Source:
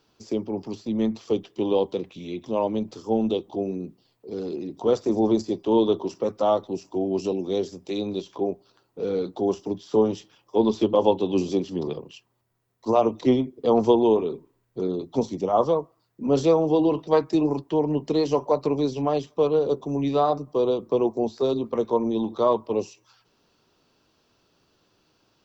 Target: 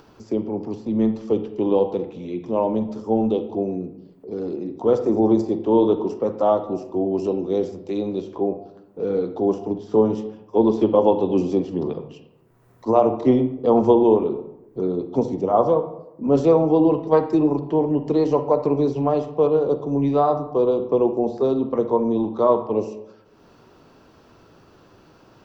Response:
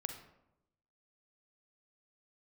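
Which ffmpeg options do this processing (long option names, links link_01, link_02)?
-filter_complex "[0:a]acompressor=mode=upward:threshold=-41dB:ratio=2.5,asplit=2[link_01][link_02];[1:a]atrim=start_sample=2205,lowpass=2100[link_03];[link_02][link_03]afir=irnorm=-1:irlink=0,volume=6.5dB[link_04];[link_01][link_04]amix=inputs=2:normalize=0,volume=-5.5dB"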